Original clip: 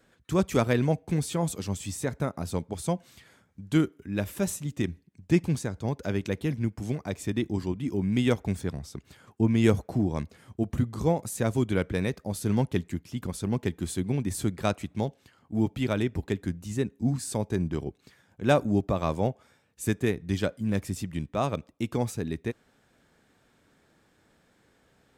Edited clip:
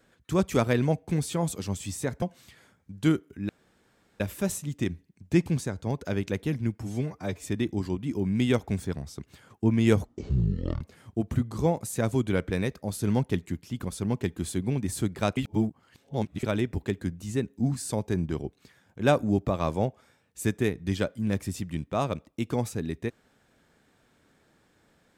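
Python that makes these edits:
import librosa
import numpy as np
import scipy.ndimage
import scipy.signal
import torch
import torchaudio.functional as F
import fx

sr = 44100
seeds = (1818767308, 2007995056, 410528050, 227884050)

y = fx.edit(x, sr, fx.cut(start_s=2.22, length_s=0.69),
    fx.insert_room_tone(at_s=4.18, length_s=0.71),
    fx.stretch_span(start_s=6.78, length_s=0.42, factor=1.5),
    fx.speed_span(start_s=9.82, length_s=0.41, speed=0.54),
    fx.reverse_span(start_s=14.79, length_s=1.06), tone=tone)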